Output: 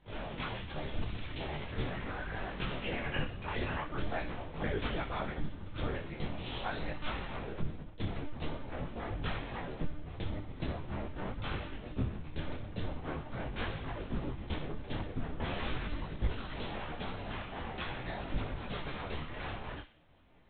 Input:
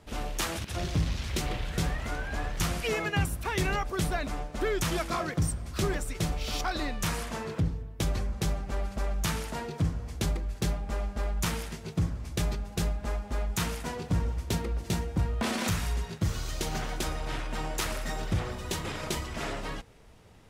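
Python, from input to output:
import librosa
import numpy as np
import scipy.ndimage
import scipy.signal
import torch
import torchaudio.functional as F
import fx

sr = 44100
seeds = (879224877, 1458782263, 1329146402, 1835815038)

p1 = scipy.signal.sosfilt(scipy.signal.butter(2, 59.0, 'highpass', fs=sr, output='sos'), x)
p2 = fx.whisperise(p1, sr, seeds[0])
p3 = fx.schmitt(p2, sr, flips_db=-43.0)
p4 = p2 + F.gain(torch.from_numpy(p3), -10.0).numpy()
p5 = fx.lpc_monotone(p4, sr, seeds[1], pitch_hz=300.0, order=8)
p6 = p5 + fx.echo_wet_highpass(p5, sr, ms=61, feedback_pct=46, hz=2300.0, wet_db=-7.0, dry=0)
p7 = fx.detune_double(p6, sr, cents=15)
y = F.gain(torch.from_numpy(p7), -3.0).numpy()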